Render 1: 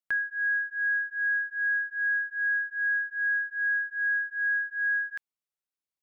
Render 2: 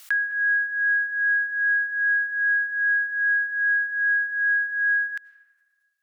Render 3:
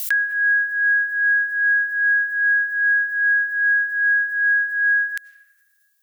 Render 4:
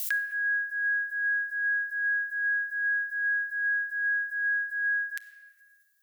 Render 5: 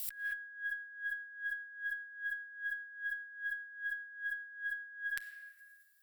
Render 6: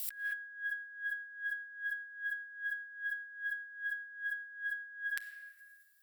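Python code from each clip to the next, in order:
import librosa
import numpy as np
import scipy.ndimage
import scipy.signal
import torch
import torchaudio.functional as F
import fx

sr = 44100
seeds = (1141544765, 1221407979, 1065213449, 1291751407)

y1 = scipy.signal.sosfilt(scipy.signal.butter(2, 1400.0, 'highpass', fs=sr, output='sos'), x)
y1 = fx.rev_freeverb(y1, sr, rt60_s=1.8, hf_ratio=0.45, predelay_ms=55, drr_db=17.5)
y1 = fx.pre_swell(y1, sr, db_per_s=59.0)
y1 = y1 * 10.0 ** (6.5 / 20.0)
y2 = fx.tilt_eq(y1, sr, slope=5.5)
y3 = fx.highpass(y2, sr, hz=1400.0, slope=6)
y3 = fx.room_shoebox(y3, sr, seeds[0], volume_m3=2000.0, walls='mixed', distance_m=0.59)
y3 = y3 * 10.0 ** (-5.5 / 20.0)
y4 = fx.notch(y3, sr, hz=6400.0, q=5.4)
y4 = fx.over_compress(y4, sr, threshold_db=-35.0, ratio=-0.5)
y4 = fx.tube_stage(y4, sr, drive_db=14.0, bias=0.45)
y4 = y4 * 10.0 ** (-4.0 / 20.0)
y5 = fx.low_shelf(y4, sr, hz=200.0, db=-9.0)
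y5 = y5 * 10.0 ** (1.0 / 20.0)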